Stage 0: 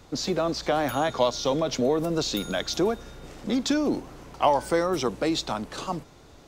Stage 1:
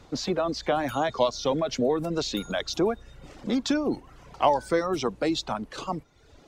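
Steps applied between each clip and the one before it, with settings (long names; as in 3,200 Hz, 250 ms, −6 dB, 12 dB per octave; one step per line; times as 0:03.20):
high-shelf EQ 9,400 Hz −11.5 dB
reverb reduction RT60 0.79 s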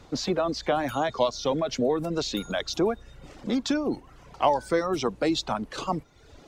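speech leveller within 4 dB 2 s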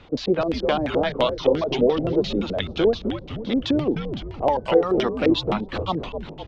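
echo with shifted repeats 255 ms, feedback 54%, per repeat −120 Hz, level −6 dB
auto-filter low-pass square 5.8 Hz 480–3,000 Hz
level +1.5 dB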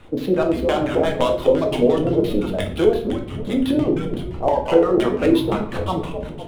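running median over 9 samples
rectangular room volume 73 cubic metres, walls mixed, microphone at 0.59 metres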